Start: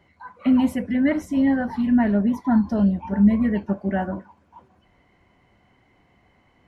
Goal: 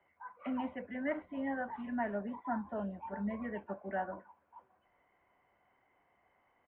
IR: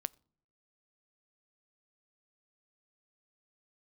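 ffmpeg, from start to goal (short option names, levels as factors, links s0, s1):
-filter_complex "[0:a]acrossover=split=460 2200:gain=0.158 1 0.141[s0][s1][s2];[s0][s1][s2]amix=inputs=3:normalize=0,acrossover=split=180|400[s3][s4][s5];[s3]acrusher=samples=10:mix=1:aa=0.000001[s6];[s6][s4][s5]amix=inputs=3:normalize=0,aresample=8000,aresample=44100,volume=0.422"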